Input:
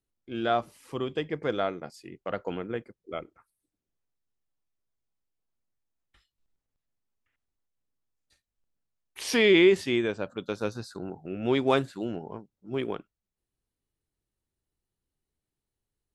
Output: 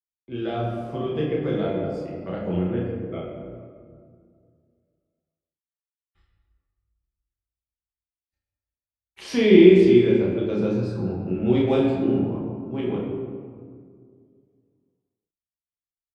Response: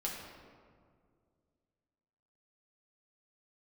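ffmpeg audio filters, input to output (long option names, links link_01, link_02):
-filter_complex "[0:a]highpass=51,aemphasis=mode=reproduction:type=bsi,agate=range=-33dB:threshold=-52dB:ratio=3:detection=peak,acrossover=split=340|670|2100[link_01][link_02][link_03][link_04];[link_03]acompressor=threshold=-46dB:ratio=6[link_05];[link_01][link_02][link_05][link_04]amix=inputs=4:normalize=0,asplit=2[link_06][link_07];[link_07]adelay=33,volume=-4dB[link_08];[link_06][link_08]amix=inputs=2:normalize=0[link_09];[1:a]atrim=start_sample=2205[link_10];[link_09][link_10]afir=irnorm=-1:irlink=0"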